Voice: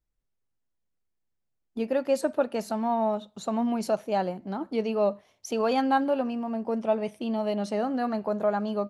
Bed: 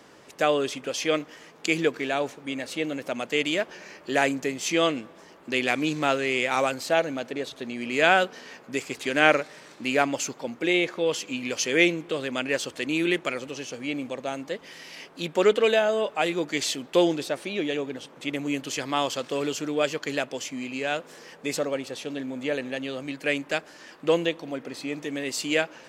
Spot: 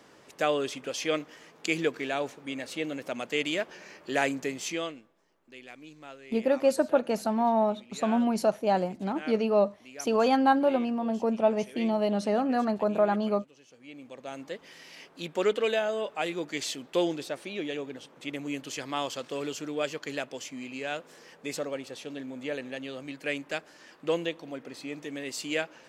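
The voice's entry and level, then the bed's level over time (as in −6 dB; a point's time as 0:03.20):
4.55 s, +1.5 dB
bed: 0:04.61 −4 dB
0:05.16 −22.5 dB
0:13.62 −22.5 dB
0:14.41 −6 dB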